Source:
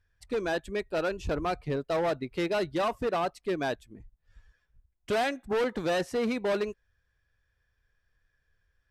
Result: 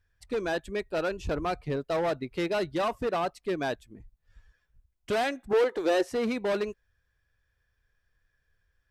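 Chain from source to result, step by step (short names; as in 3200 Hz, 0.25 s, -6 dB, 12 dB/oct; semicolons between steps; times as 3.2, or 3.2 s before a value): 5.53–6.09 resonant low shelf 270 Hz -10 dB, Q 3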